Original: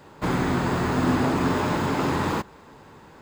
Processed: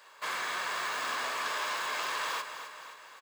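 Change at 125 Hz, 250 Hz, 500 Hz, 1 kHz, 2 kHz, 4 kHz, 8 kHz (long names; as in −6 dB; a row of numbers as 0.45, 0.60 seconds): below −35 dB, −32.5 dB, −16.0 dB, −7.0 dB, −1.5 dB, +0.5 dB, 0.0 dB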